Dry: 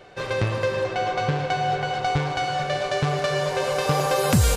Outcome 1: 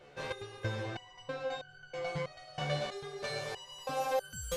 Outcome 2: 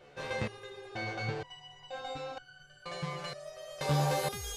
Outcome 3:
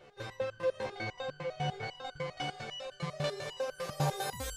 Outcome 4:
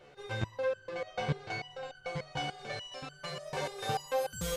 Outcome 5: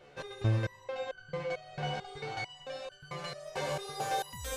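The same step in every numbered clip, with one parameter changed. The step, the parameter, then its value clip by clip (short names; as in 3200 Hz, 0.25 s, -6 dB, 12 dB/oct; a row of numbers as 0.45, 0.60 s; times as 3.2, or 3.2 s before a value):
stepped resonator, rate: 3.1, 2.1, 10, 6.8, 4.5 Hz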